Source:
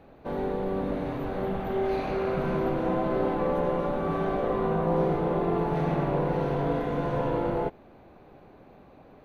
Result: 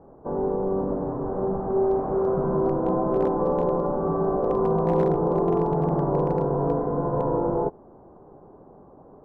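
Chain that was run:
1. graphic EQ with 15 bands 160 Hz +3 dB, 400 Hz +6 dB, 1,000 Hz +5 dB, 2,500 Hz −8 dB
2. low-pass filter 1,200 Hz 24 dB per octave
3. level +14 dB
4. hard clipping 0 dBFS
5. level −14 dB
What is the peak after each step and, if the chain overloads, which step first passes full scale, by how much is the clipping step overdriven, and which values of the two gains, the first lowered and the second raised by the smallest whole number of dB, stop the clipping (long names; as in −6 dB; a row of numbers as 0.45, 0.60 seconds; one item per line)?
−10.0, −10.0, +4.0, 0.0, −14.0 dBFS
step 3, 4.0 dB
step 3 +10 dB, step 5 −10 dB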